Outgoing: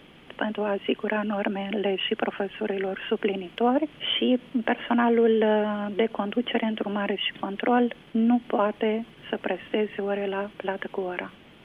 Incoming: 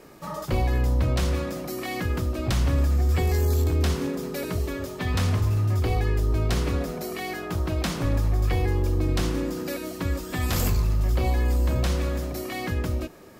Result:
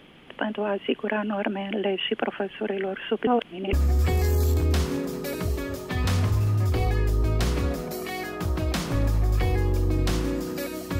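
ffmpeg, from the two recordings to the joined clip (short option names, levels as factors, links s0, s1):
-filter_complex "[0:a]apad=whole_dur=10.99,atrim=end=10.99,asplit=2[s0][s1];[s0]atrim=end=3.272[s2];[s1]atrim=start=3.268:end=3.732,asetpts=PTS-STARTPTS,areverse[s3];[1:a]atrim=start=2.828:end=10.09[s4];[s2][s3]acrossfade=d=0.004:c1=hsin:c2=hsin[s5];[s5][s4]acrossfade=d=0.004:c1=hsin:c2=hsin"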